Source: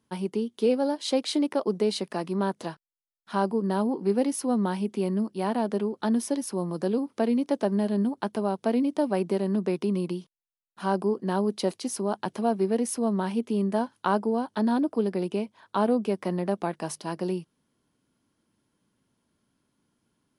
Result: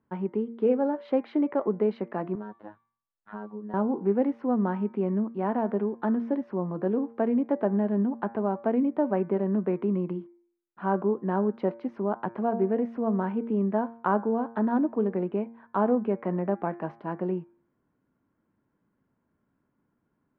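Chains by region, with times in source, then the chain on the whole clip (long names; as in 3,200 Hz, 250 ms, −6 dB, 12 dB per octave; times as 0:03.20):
0:02.35–0:03.74: phases set to zero 105 Hz + tuned comb filter 160 Hz, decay 0.45 s, harmonics odd, mix 70% + multiband upward and downward compressor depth 70%
whole clip: low-pass filter 1,900 Hz 24 dB per octave; hum removal 115.5 Hz, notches 21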